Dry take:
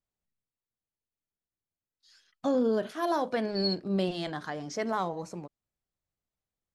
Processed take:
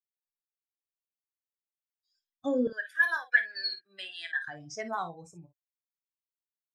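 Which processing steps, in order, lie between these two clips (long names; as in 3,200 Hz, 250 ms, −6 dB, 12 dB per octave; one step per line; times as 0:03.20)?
spectral dynamics exaggerated over time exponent 2
0:02.67–0:04.48: high-pass with resonance 1,700 Hz, resonance Q 15
ambience of single reflections 24 ms −11.5 dB, 53 ms −12 dB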